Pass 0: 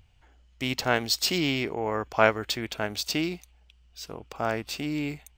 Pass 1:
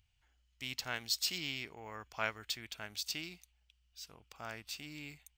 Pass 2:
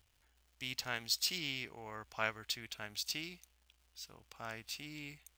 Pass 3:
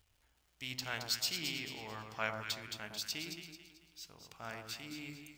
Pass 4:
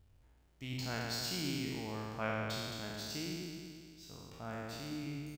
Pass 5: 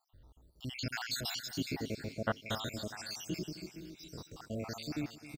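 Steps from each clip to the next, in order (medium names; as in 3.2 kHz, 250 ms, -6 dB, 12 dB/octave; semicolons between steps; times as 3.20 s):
amplifier tone stack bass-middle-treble 5-5-5; trim -1.5 dB
crackle 420 per s -60 dBFS
flange 0.63 Hz, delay 2.1 ms, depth 6.4 ms, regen +87%; echo whose repeats swap between lows and highs 110 ms, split 1.2 kHz, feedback 61%, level -3.5 dB; on a send at -22 dB: reverberation RT60 1.1 s, pre-delay 3 ms; on the sum: trim +3.5 dB
spectral sustain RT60 2.19 s; tilt shelf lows +9 dB, about 840 Hz; doubling 22 ms -13.5 dB; trim -1.5 dB
random holes in the spectrogram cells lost 70%; feedback delay 261 ms, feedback 51%, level -16 dB; trim +6.5 dB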